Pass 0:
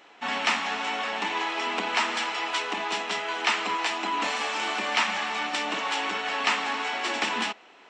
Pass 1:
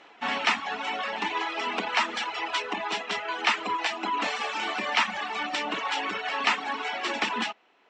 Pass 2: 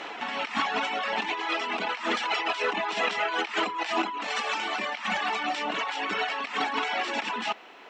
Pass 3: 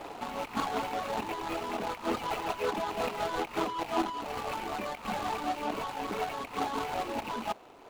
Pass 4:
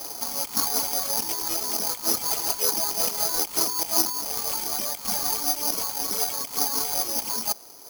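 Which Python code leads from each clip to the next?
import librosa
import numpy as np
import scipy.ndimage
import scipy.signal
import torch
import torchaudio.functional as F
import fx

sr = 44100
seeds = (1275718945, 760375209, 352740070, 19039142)

y1 = fx.air_absorb(x, sr, metres=70.0)
y1 = fx.dereverb_blind(y1, sr, rt60_s=1.2)
y1 = y1 * librosa.db_to_amplitude(2.0)
y2 = fx.low_shelf(y1, sr, hz=99.0, db=-7.5)
y2 = fx.over_compress(y2, sr, threshold_db=-38.0, ratio=-1.0)
y2 = y2 * librosa.db_to_amplitude(7.5)
y3 = scipy.signal.medfilt(y2, 25)
y4 = (np.kron(scipy.signal.resample_poly(y3, 1, 8), np.eye(8)[0]) * 8)[:len(y3)]
y4 = y4 * librosa.db_to_amplitude(-1.5)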